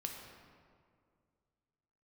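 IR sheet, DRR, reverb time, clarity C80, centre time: 1.5 dB, 2.2 s, 4.5 dB, 62 ms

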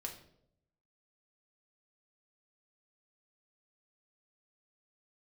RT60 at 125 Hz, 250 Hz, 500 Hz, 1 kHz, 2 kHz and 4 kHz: 1.1, 0.90, 0.85, 0.60, 0.50, 0.50 s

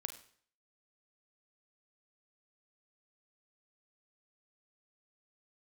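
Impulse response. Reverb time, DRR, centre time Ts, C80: 0.55 s, 8.0 dB, 10 ms, 14.5 dB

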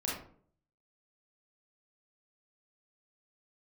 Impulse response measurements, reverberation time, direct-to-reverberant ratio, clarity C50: 0.55 s, -5.0 dB, 2.0 dB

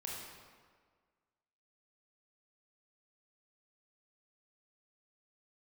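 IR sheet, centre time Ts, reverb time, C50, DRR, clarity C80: 93 ms, 1.7 s, -0.5 dB, -3.5 dB, 1.5 dB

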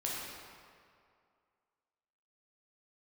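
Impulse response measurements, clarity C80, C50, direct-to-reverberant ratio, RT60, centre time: 0.0 dB, -2.0 dB, -5.5 dB, 2.3 s, 0.128 s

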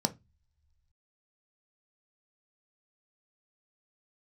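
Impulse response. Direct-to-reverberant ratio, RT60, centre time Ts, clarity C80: 6.5 dB, not exponential, 5 ms, 29.0 dB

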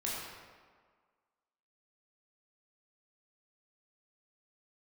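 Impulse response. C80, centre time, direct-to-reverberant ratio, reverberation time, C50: 0.5 dB, 0.104 s, -6.5 dB, 1.7 s, -1.5 dB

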